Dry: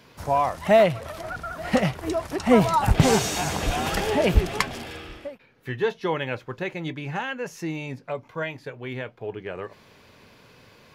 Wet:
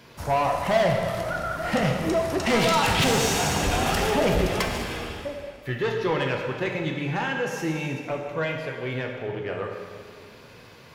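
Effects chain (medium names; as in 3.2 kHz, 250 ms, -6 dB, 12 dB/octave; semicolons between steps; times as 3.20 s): 2.46–3.04 s: frequency weighting D; saturation -21 dBFS, distortion -7 dB; plate-style reverb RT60 2.1 s, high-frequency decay 0.9×, DRR 1.5 dB; trim +2 dB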